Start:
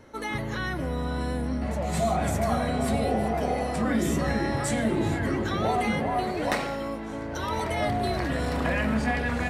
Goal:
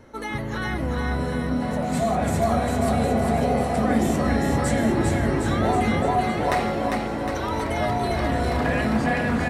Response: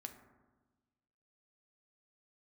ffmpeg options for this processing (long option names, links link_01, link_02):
-filter_complex "[0:a]aecho=1:1:400|760|1084|1376|1638:0.631|0.398|0.251|0.158|0.1,asplit=2[link_01][link_02];[1:a]atrim=start_sample=2205,lowpass=2500,lowshelf=frequency=120:gain=9[link_03];[link_02][link_03]afir=irnorm=-1:irlink=0,volume=-6dB[link_04];[link_01][link_04]amix=inputs=2:normalize=0"